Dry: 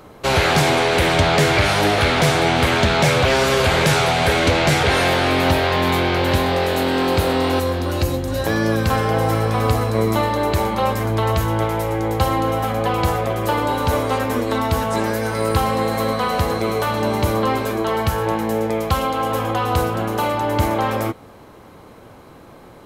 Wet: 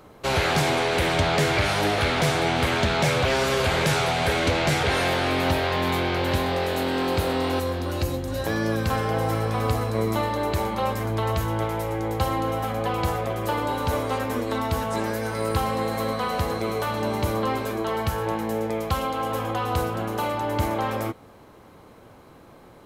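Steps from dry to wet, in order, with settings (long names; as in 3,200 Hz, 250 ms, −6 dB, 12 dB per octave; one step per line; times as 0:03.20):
bit-depth reduction 12 bits, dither none
level −6 dB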